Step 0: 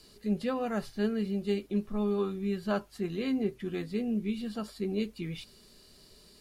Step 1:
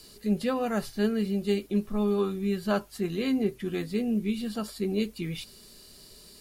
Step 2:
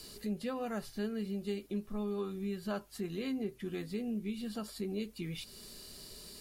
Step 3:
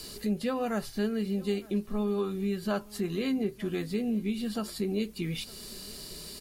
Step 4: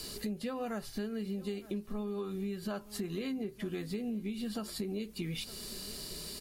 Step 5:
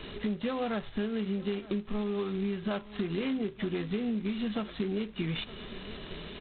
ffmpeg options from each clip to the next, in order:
ffmpeg -i in.wav -af "highshelf=frequency=7200:gain=9.5,volume=3.5dB" out.wav
ffmpeg -i in.wav -af "acompressor=threshold=-44dB:ratio=2,volume=1dB" out.wav
ffmpeg -i in.wav -af "aecho=1:1:912:0.075,volume=7dB" out.wav
ffmpeg -i in.wav -af "acompressor=threshold=-34dB:ratio=6" out.wav
ffmpeg -i in.wav -af "volume=5dB" -ar 8000 -c:a adpcm_g726 -b:a 16k out.wav

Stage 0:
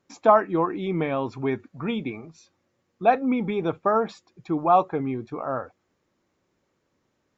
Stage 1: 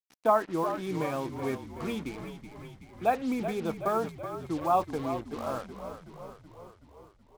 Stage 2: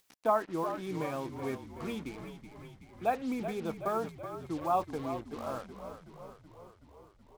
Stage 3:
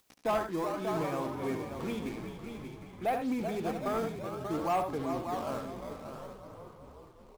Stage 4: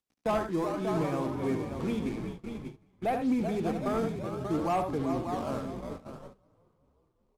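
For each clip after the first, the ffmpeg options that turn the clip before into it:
ffmpeg -i in.wav -filter_complex "[0:a]lowpass=frequency=5200:width=0.5412,lowpass=frequency=5200:width=1.3066,acrusher=bits=5:mix=0:aa=0.5,asplit=9[link_01][link_02][link_03][link_04][link_05][link_06][link_07][link_08][link_09];[link_02]adelay=376,afreqshift=-40,volume=-10dB[link_10];[link_03]adelay=752,afreqshift=-80,volume=-14dB[link_11];[link_04]adelay=1128,afreqshift=-120,volume=-18dB[link_12];[link_05]adelay=1504,afreqshift=-160,volume=-22dB[link_13];[link_06]adelay=1880,afreqshift=-200,volume=-26.1dB[link_14];[link_07]adelay=2256,afreqshift=-240,volume=-30.1dB[link_15];[link_08]adelay=2632,afreqshift=-280,volume=-34.1dB[link_16];[link_09]adelay=3008,afreqshift=-320,volume=-38.1dB[link_17];[link_01][link_10][link_11][link_12][link_13][link_14][link_15][link_16][link_17]amix=inputs=9:normalize=0,volume=-7dB" out.wav
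ffmpeg -i in.wav -af "acompressor=mode=upward:threshold=-47dB:ratio=2.5,volume=-4dB" out.wav
ffmpeg -i in.wav -filter_complex "[0:a]aecho=1:1:71|89|587|673:0.335|0.178|0.355|0.15,asplit=2[link_01][link_02];[link_02]acrusher=samples=18:mix=1:aa=0.000001:lfo=1:lforange=28.8:lforate=0.56,volume=-10dB[link_03];[link_01][link_03]amix=inputs=2:normalize=0,asoftclip=type=tanh:threshold=-23.5dB" out.wav
ffmpeg -i in.wav -filter_complex "[0:a]lowpass=12000,agate=range=-21dB:threshold=-42dB:ratio=16:detection=peak,acrossover=split=380|3300[link_01][link_02][link_03];[link_01]acontrast=48[link_04];[link_04][link_02][link_03]amix=inputs=3:normalize=0" out.wav

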